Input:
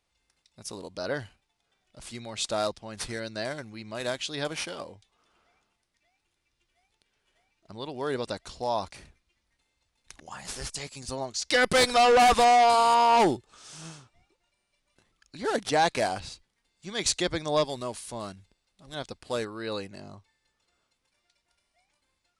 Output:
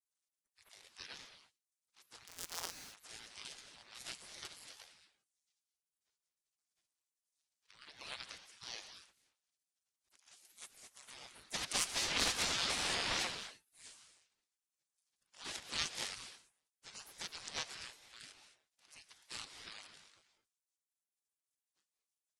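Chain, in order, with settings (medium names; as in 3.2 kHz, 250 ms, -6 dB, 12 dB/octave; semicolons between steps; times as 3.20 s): 2.27–2.72 s: sorted samples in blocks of 256 samples; treble shelf 5.8 kHz -12 dB; spectral gate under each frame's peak -30 dB weak; gated-style reverb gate 250 ms rising, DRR 8.5 dB; ring modulator with a swept carrier 480 Hz, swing 85%, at 2.5 Hz; trim +7 dB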